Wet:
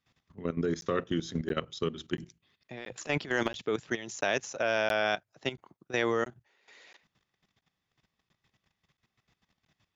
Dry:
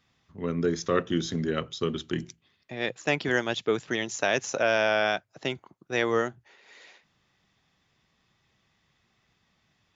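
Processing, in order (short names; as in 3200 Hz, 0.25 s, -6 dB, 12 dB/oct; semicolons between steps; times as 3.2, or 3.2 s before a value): 2.77–3.62 transient shaper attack -7 dB, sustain +8 dB; level quantiser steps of 14 dB; crackling interface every 0.68 s, samples 512, zero, from 0.81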